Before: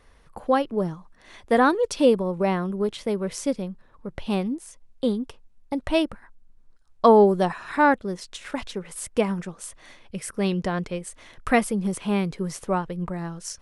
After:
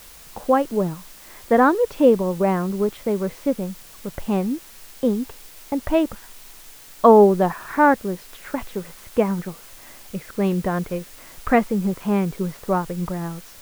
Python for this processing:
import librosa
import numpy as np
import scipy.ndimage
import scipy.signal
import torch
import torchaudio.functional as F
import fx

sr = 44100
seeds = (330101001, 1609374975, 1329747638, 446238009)

p1 = scipy.signal.sosfilt(scipy.signal.butter(2, 1800.0, 'lowpass', fs=sr, output='sos'), x)
p2 = fx.quant_dither(p1, sr, seeds[0], bits=6, dither='triangular')
p3 = p1 + (p2 * 10.0 ** (-10.0 / 20.0))
y = p3 * 10.0 ** (1.0 / 20.0)